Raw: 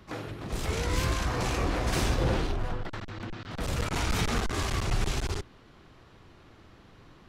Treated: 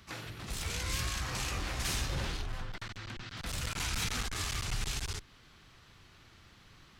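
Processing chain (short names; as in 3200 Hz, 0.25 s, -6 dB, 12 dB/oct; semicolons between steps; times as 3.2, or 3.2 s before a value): passive tone stack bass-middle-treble 5-5-5; in parallel at 0 dB: compressor, threshold -49 dBFS, peak gain reduction 13 dB; on the sum: speed mistake 24 fps film run at 25 fps; gain +4 dB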